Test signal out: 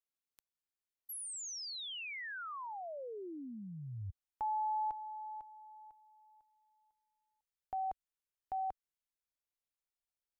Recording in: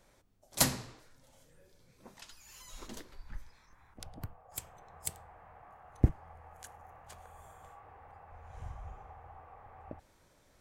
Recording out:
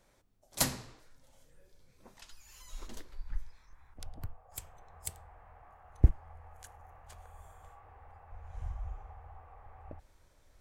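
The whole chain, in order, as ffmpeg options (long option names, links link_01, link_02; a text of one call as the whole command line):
ffmpeg -i in.wav -af "asubboost=boost=4:cutoff=79,volume=-2.5dB" out.wav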